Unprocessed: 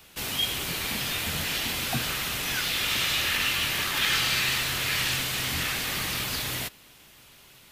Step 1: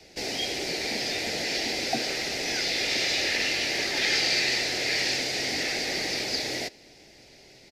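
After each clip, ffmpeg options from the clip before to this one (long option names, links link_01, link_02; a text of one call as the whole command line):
ffmpeg -i in.wav -filter_complex "[0:a]firequalizer=gain_entry='entry(150,0);entry(350,9);entry(760,6);entry(1100,-15);entry(2000,4);entry(3100,-7);entry(4800,8);entry(8500,-9);entry(15000,-21)':delay=0.05:min_phase=1,acrossover=split=230|510|4900[link_01][link_02][link_03][link_04];[link_01]acompressor=threshold=-47dB:ratio=10[link_05];[link_05][link_02][link_03][link_04]amix=inputs=4:normalize=0" out.wav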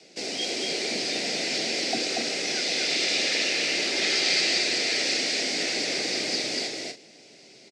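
ffmpeg -i in.wav -filter_complex "[0:a]highpass=frequency=160:width=0.5412,highpass=frequency=160:width=1.3066,equalizer=frequency=860:width_type=q:width=4:gain=-6,equalizer=frequency=1800:width_type=q:width=4:gain=-5,equalizer=frequency=8100:width_type=q:width=4:gain=5,lowpass=frequency=9000:width=0.5412,lowpass=frequency=9000:width=1.3066,asplit=2[link_01][link_02];[link_02]aecho=0:1:236.2|274.1:0.708|0.282[link_03];[link_01][link_03]amix=inputs=2:normalize=0" out.wav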